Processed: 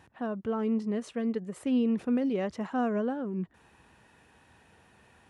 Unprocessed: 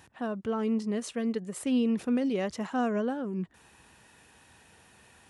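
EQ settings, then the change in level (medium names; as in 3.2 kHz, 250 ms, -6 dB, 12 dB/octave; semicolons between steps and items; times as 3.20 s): treble shelf 3.6 kHz -12 dB; 0.0 dB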